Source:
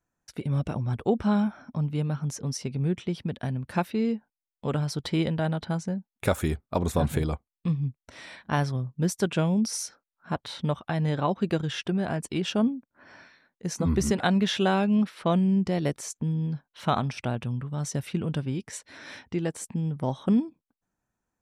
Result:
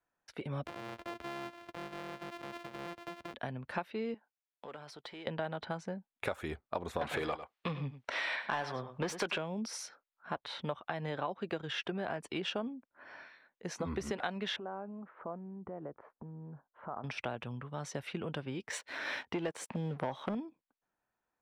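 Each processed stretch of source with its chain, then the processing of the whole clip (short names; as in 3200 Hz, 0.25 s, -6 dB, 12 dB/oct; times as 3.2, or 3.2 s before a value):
0.66–3.34 sample sorter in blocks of 128 samples + compressor 4:1, threshold -38 dBFS
4.14–5.27 HPF 430 Hz 6 dB/oct + sample leveller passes 1 + compressor, threshold -41 dBFS
7.01–9.38 overdrive pedal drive 22 dB, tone 5000 Hz, clips at -11 dBFS + echo 99 ms -14 dB
14.56–17.04 compressor 12:1, threshold -32 dBFS + LPF 1300 Hz 24 dB/oct
18.7–20.35 HPF 86 Hz 6 dB/oct + sample leveller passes 2
whole clip: three-band isolator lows -13 dB, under 380 Hz, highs -15 dB, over 4000 Hz; compressor 5:1, threshold -33 dBFS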